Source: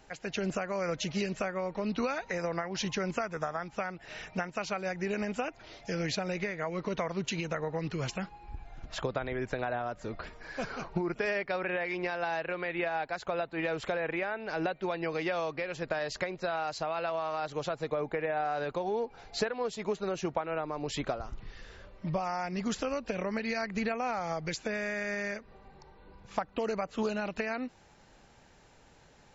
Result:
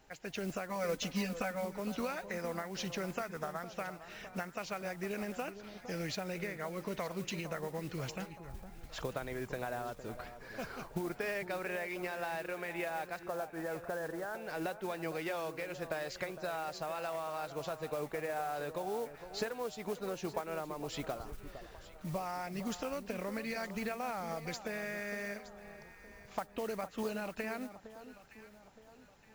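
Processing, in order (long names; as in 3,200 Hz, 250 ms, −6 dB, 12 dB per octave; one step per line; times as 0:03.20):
0:00.69–0:01.65: comb filter 4 ms, depth 91%
0:13.19–0:14.35: elliptic low-pass filter 1,700 Hz
noise that follows the level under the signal 18 dB
on a send: delay that swaps between a low-pass and a high-pass 459 ms, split 1,300 Hz, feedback 62%, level −11 dB
on the sum: level −6 dB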